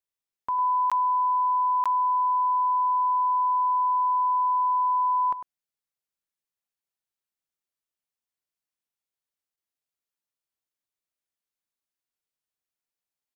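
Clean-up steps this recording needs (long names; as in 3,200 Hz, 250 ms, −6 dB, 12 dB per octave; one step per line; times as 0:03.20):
repair the gap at 0:00.90/0:01.84/0:09.56, 16 ms
echo removal 101 ms −10.5 dB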